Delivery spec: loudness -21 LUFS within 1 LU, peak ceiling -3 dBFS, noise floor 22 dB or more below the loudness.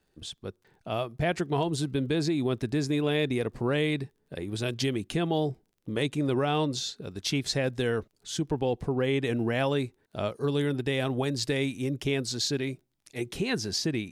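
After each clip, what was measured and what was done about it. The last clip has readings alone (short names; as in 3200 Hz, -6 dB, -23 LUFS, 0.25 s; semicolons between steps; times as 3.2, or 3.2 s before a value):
ticks 24/s; loudness -29.5 LUFS; peak -15.0 dBFS; loudness target -21.0 LUFS
-> de-click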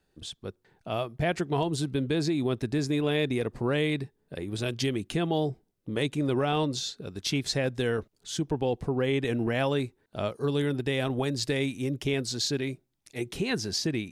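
ticks 0/s; loudness -29.5 LUFS; peak -15.0 dBFS; loudness target -21.0 LUFS
-> gain +8.5 dB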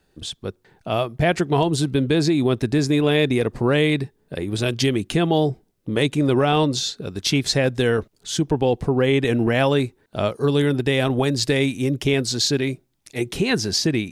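loudness -21.0 LUFS; peak -6.5 dBFS; noise floor -66 dBFS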